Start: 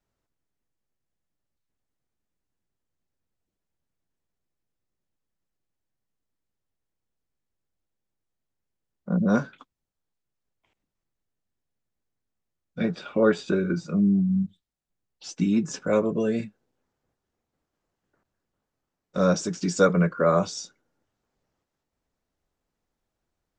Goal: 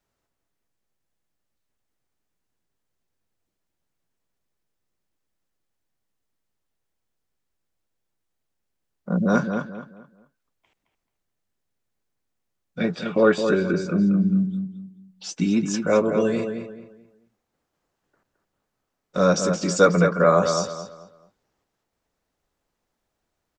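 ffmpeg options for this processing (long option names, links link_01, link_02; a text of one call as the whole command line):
ffmpeg -i in.wav -filter_complex "[0:a]lowshelf=frequency=320:gain=-5.5,asplit=2[link_01][link_02];[link_02]adelay=217,lowpass=frequency=2700:poles=1,volume=-6.5dB,asplit=2[link_03][link_04];[link_04]adelay=217,lowpass=frequency=2700:poles=1,volume=0.31,asplit=2[link_05][link_06];[link_06]adelay=217,lowpass=frequency=2700:poles=1,volume=0.31,asplit=2[link_07][link_08];[link_08]adelay=217,lowpass=frequency=2700:poles=1,volume=0.31[link_09];[link_01][link_03][link_05][link_07][link_09]amix=inputs=5:normalize=0,volume=5dB" out.wav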